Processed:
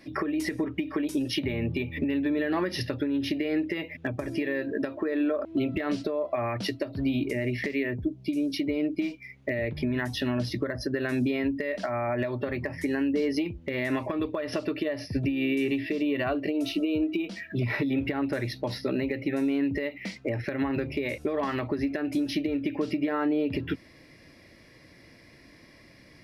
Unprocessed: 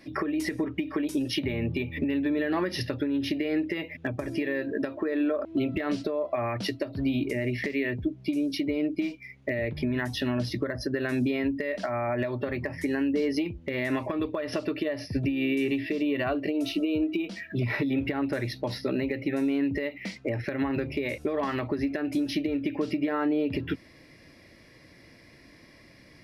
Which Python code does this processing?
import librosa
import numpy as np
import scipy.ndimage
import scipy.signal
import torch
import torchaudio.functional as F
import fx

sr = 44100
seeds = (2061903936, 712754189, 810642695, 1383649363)

y = fx.peak_eq(x, sr, hz=fx.line((7.82, 5300.0), (8.36, 940.0)), db=-11.0, octaves=1.2, at=(7.82, 8.36), fade=0.02)